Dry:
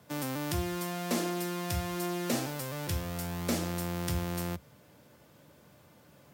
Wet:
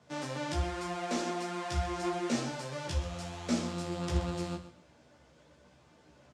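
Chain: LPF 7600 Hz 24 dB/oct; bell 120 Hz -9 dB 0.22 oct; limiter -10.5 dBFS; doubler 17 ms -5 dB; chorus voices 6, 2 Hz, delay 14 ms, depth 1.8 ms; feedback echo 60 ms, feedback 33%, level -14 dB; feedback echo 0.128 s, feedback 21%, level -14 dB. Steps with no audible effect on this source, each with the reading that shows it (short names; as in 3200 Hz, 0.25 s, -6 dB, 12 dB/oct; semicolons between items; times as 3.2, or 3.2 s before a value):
limiter -10.5 dBFS: input peak -17.0 dBFS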